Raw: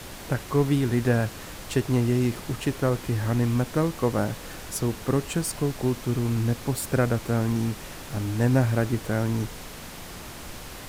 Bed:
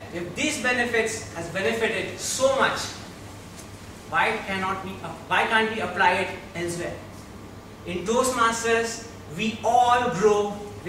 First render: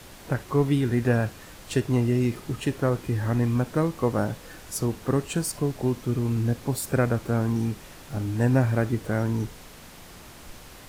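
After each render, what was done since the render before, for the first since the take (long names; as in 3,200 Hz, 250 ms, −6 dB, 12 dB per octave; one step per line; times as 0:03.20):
noise reduction from a noise print 6 dB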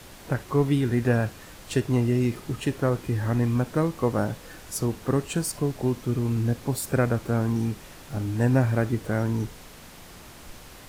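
no processing that can be heard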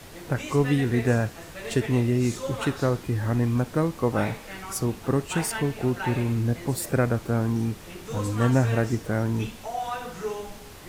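mix in bed −12.5 dB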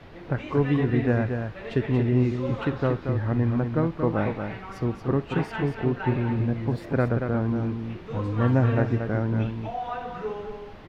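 high-frequency loss of the air 320 metres
single-tap delay 231 ms −6.5 dB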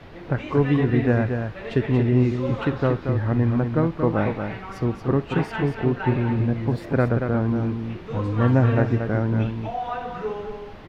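level +3 dB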